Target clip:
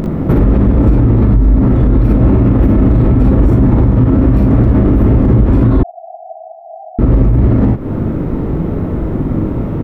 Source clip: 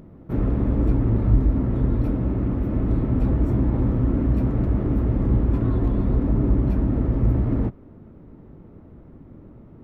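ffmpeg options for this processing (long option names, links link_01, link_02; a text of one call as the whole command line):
ffmpeg -i in.wav -filter_complex "[0:a]aecho=1:1:41|60:0.631|0.596,acompressor=threshold=-28dB:ratio=5,asettb=1/sr,asplit=3[link_01][link_02][link_03];[link_01]atrim=end=5.834[link_04];[link_02]atrim=start=5.83:end=6.99,asetpts=PTS-STARTPTS,afade=type=in:duration=0.004:curve=qsin,afade=type=out:start_time=1.156:duration=0.004:curve=qsin,asuperpass=centerf=720:order=12:qfactor=4.6[link_05];[link_03]atrim=start=6.986[link_06];[link_04][link_05]acrossfade=duration=0.004:curve1=hsin:curve2=qsin[link_07];[link_07][link_06]acrossfade=duration=0.004:curve1=qsin:curve2=hsin,alimiter=level_in=27.5dB:limit=-1dB:release=50:level=0:latency=1,volume=-1dB" out.wav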